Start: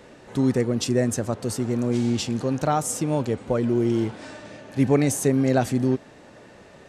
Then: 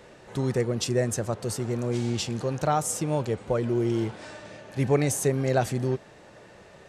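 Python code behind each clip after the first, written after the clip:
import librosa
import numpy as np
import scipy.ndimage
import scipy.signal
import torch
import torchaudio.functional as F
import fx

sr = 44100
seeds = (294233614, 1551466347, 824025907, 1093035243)

y = fx.peak_eq(x, sr, hz=260.0, db=-9.5, octaves=0.36)
y = y * librosa.db_to_amplitude(-1.5)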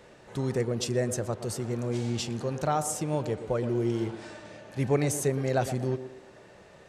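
y = fx.echo_banded(x, sr, ms=119, feedback_pct=44, hz=450.0, wet_db=-9.5)
y = y * librosa.db_to_amplitude(-3.0)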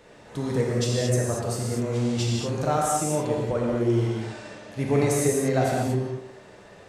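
y = fx.rev_gated(x, sr, seeds[0], gate_ms=260, shape='flat', drr_db=-3.0)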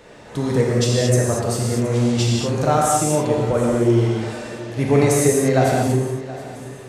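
y = fx.echo_feedback(x, sr, ms=723, feedback_pct=35, wet_db=-17.0)
y = y * librosa.db_to_amplitude(6.5)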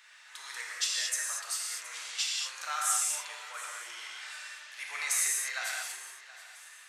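y = scipy.signal.sosfilt(scipy.signal.butter(4, 1400.0, 'highpass', fs=sr, output='sos'), x)
y = y * librosa.db_to_amplitude(-4.5)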